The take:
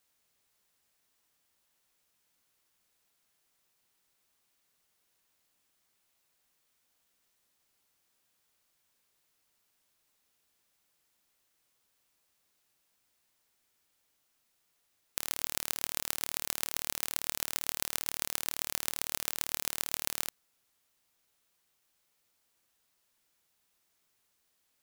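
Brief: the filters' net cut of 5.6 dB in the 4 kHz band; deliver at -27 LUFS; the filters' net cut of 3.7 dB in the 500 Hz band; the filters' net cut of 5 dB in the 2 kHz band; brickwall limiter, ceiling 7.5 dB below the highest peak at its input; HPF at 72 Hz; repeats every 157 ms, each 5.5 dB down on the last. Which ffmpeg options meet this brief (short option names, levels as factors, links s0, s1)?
-af "highpass=72,equalizer=f=500:t=o:g=-4.5,equalizer=f=2000:t=o:g=-4.5,equalizer=f=4000:t=o:g=-6,alimiter=limit=0.282:level=0:latency=1,aecho=1:1:157|314|471|628|785|942|1099:0.531|0.281|0.149|0.079|0.0419|0.0222|0.0118,volume=3.35"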